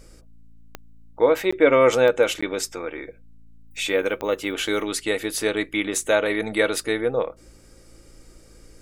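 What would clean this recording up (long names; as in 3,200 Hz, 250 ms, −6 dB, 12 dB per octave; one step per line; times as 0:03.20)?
click removal
hum removal 55.9 Hz, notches 5
repair the gap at 0:01.51/0:02.41, 15 ms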